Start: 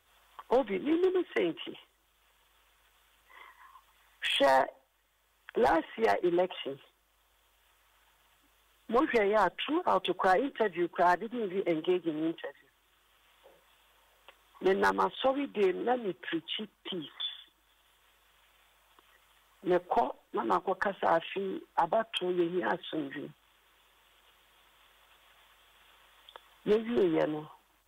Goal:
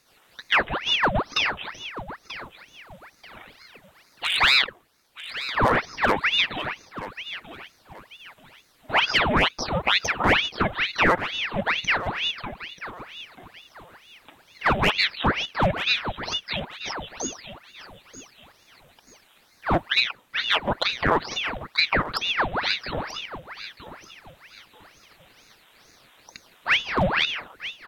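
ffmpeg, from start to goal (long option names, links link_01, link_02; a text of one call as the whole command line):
ffmpeg -i in.wav -af "highpass=250,aecho=1:1:936|1872|2808:0.211|0.0676|0.0216,aeval=exprs='val(0)*sin(2*PI*1700*n/s+1700*0.9/2.2*sin(2*PI*2.2*n/s))':channel_layout=same,volume=9dB" out.wav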